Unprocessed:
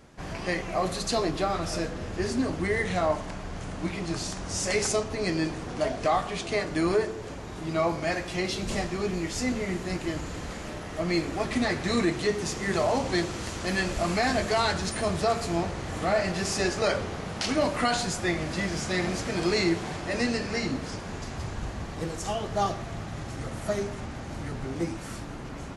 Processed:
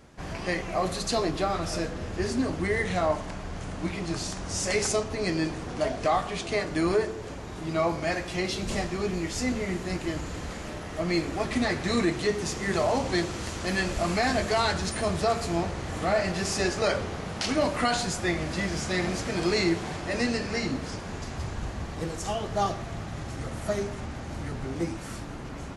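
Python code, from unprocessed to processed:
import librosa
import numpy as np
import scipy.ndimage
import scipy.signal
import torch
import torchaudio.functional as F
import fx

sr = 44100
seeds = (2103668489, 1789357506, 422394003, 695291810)

y = fx.peak_eq(x, sr, hz=72.0, db=3.5, octaves=0.31)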